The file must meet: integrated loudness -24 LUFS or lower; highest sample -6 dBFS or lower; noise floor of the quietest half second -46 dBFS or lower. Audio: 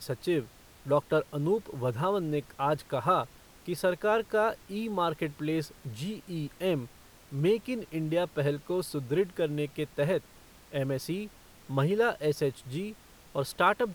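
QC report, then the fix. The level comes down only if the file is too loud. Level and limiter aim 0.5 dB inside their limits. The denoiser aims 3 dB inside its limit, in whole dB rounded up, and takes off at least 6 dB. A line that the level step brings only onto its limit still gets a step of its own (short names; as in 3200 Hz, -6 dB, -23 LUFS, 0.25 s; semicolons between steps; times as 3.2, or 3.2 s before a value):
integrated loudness -31.0 LUFS: OK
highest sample -11.5 dBFS: OK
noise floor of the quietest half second -55 dBFS: OK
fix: none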